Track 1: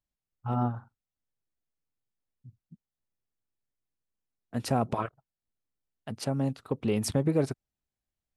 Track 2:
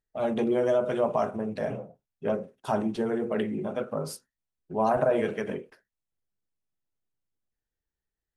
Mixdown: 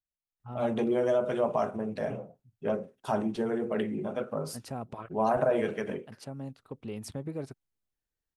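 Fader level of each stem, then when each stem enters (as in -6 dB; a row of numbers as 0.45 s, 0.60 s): -11.0 dB, -2.0 dB; 0.00 s, 0.40 s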